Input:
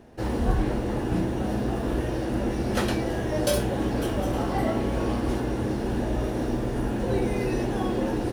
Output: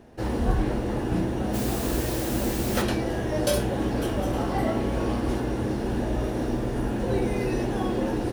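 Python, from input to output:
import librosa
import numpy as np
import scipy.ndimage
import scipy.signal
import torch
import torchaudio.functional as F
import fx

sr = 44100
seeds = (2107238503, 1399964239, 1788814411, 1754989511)

y = fx.quant_dither(x, sr, seeds[0], bits=6, dither='triangular', at=(1.53, 2.81), fade=0.02)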